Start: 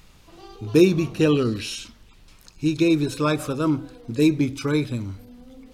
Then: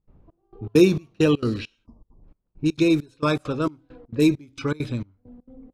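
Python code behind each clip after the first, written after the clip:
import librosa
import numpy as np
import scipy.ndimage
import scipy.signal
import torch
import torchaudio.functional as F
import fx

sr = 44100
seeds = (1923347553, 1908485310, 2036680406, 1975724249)

y = fx.env_lowpass(x, sr, base_hz=530.0, full_db=-18.0)
y = fx.step_gate(y, sr, bpm=200, pattern='.xxx...xx', floor_db=-24.0, edge_ms=4.5)
y = fx.spec_erase(y, sr, start_s=1.86, length_s=0.38, low_hz=1200.0, high_hz=4600.0)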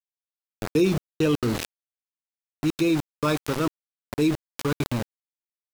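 y = np.where(np.abs(x) >= 10.0 ** (-26.5 / 20.0), x, 0.0)
y = fx.env_flatten(y, sr, amount_pct=50)
y = y * librosa.db_to_amplitude(-6.5)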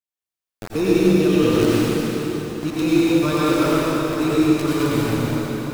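y = fx.rev_plate(x, sr, seeds[0], rt60_s=4.8, hf_ratio=0.8, predelay_ms=75, drr_db=-9.5)
y = y * librosa.db_to_amplitude(-2.5)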